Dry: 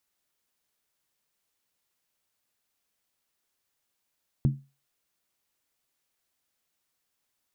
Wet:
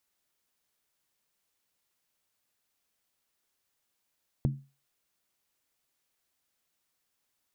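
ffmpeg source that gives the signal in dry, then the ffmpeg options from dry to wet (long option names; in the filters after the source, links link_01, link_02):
-f lavfi -i "aevalsrc='0.158*pow(10,-3*t/0.29)*sin(2*PI*138*t)+0.0631*pow(10,-3*t/0.23)*sin(2*PI*220*t)+0.0251*pow(10,-3*t/0.198)*sin(2*PI*294.8*t)+0.01*pow(10,-3*t/0.191)*sin(2*PI*316.8*t)+0.00398*pow(10,-3*t/0.178)*sin(2*PI*366.1*t)':duration=0.63:sample_rate=44100"
-af "acompressor=threshold=-25dB:ratio=6"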